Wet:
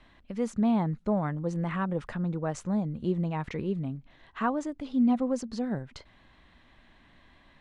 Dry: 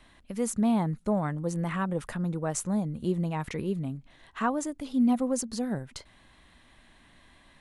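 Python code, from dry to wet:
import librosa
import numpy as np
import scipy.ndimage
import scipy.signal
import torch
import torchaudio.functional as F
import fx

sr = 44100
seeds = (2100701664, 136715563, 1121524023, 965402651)

y = fx.air_absorb(x, sr, metres=130.0)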